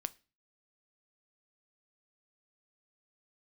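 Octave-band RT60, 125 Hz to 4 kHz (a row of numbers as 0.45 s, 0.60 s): 0.55 s, 0.45 s, 0.35 s, 0.30 s, 0.35 s, 0.35 s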